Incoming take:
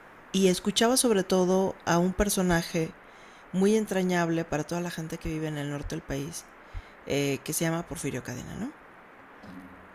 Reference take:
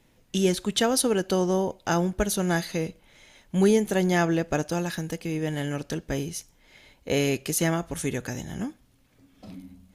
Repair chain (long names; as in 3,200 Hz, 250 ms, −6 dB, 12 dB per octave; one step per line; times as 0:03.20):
clipped peaks rebuilt −12.5 dBFS
high-pass at the plosives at 0:02.49/0:05.23/0:05.82/0:06.73
noise reduction from a noise print 9 dB
level 0 dB, from 0:02.84 +3.5 dB